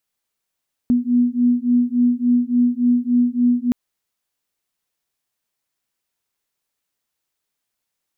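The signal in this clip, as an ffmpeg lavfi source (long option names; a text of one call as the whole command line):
ffmpeg -f lavfi -i "aevalsrc='0.141*(sin(2*PI*242*t)+sin(2*PI*245.5*t))':duration=2.82:sample_rate=44100" out.wav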